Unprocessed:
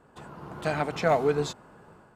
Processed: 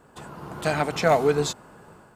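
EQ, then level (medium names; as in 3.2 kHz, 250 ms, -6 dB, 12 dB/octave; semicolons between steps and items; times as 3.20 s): treble shelf 5.3 kHz +9 dB; +3.5 dB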